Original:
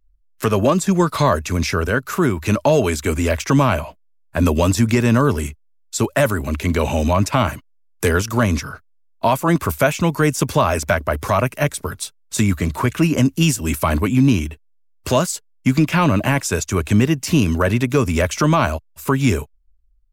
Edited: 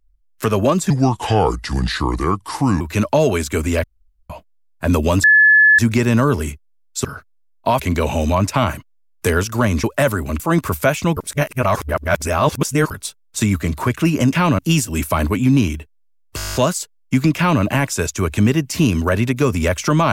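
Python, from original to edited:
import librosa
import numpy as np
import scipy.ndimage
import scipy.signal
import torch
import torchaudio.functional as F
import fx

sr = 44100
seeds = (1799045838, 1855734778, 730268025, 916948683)

y = fx.edit(x, sr, fx.speed_span(start_s=0.9, length_s=1.43, speed=0.75),
    fx.room_tone_fill(start_s=3.36, length_s=0.46),
    fx.insert_tone(at_s=4.76, length_s=0.55, hz=1720.0, db=-7.0),
    fx.swap(start_s=6.02, length_s=0.56, other_s=8.62, other_length_s=0.75),
    fx.reverse_span(start_s=10.14, length_s=1.74),
    fx.stutter(start_s=15.08, slice_s=0.02, count=10),
    fx.duplicate(start_s=15.9, length_s=0.26, to_s=13.3), tone=tone)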